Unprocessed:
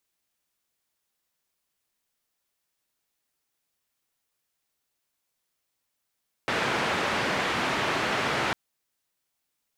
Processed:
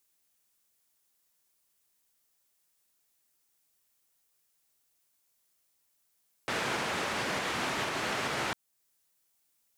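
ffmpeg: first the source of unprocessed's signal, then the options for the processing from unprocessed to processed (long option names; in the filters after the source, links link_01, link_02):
-f lavfi -i "anoisesrc=color=white:duration=2.05:sample_rate=44100:seed=1,highpass=frequency=110,lowpass=frequency=2000,volume=-12dB"
-filter_complex "[0:a]acrossover=split=5900[link_01][link_02];[link_02]acontrast=86[link_03];[link_01][link_03]amix=inputs=2:normalize=0,alimiter=limit=-23dB:level=0:latency=1:release=369"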